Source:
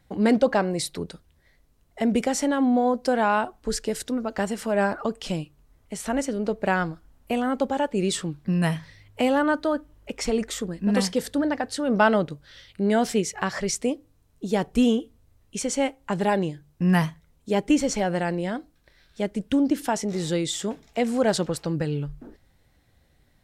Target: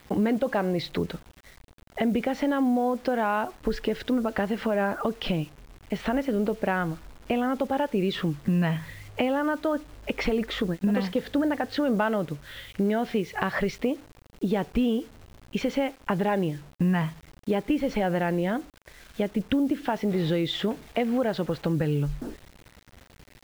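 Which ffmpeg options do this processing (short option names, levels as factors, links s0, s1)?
-filter_complex "[0:a]asplit=3[s0][s1][s2];[s0]afade=t=out:st=10.66:d=0.02[s3];[s1]agate=range=0.178:threshold=0.0316:ratio=16:detection=peak,afade=t=in:st=10.66:d=0.02,afade=t=out:st=11.27:d=0.02[s4];[s2]afade=t=in:st=11.27:d=0.02[s5];[s3][s4][s5]amix=inputs=3:normalize=0,lowpass=f=3400:w=0.5412,lowpass=f=3400:w=1.3066,acompressor=threshold=0.0355:ratio=6,asplit=2[s6][s7];[s7]alimiter=level_in=1.33:limit=0.0631:level=0:latency=1,volume=0.75,volume=0.794[s8];[s6][s8]amix=inputs=2:normalize=0,acontrast=29,acrusher=bits=7:mix=0:aa=0.000001,volume=0.794"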